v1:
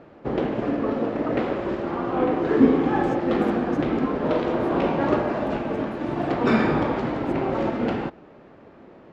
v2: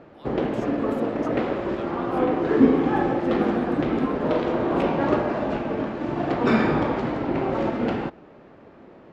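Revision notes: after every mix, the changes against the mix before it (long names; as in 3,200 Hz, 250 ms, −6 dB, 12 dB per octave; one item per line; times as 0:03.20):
speech: entry −2.50 s
reverb: on, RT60 0.95 s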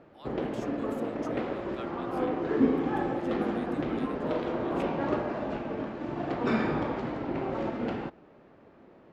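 background −7.5 dB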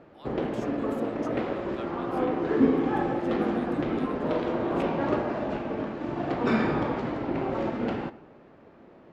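background: send on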